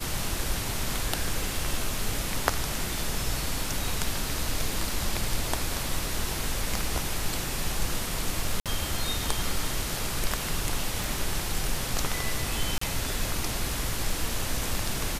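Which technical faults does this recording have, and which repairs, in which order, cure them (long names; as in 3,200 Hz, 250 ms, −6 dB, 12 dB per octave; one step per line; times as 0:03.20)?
0:08.60–0:08.66: drop-out 57 ms
0:11.04: click
0:12.78–0:12.81: drop-out 34 ms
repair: click removal
repair the gap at 0:08.60, 57 ms
repair the gap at 0:12.78, 34 ms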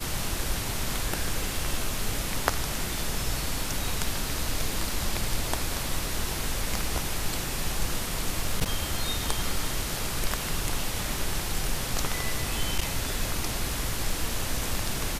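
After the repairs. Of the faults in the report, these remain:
none of them is left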